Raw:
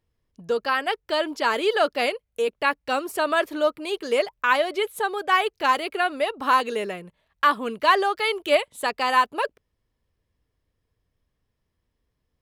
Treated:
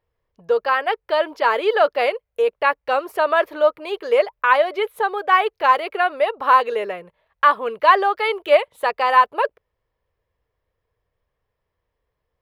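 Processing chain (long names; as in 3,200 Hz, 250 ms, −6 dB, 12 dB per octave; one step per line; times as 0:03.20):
octave-band graphic EQ 250/500/1,000/2,000/8,000 Hz −9/+9/+6/+4/−11 dB
level −2 dB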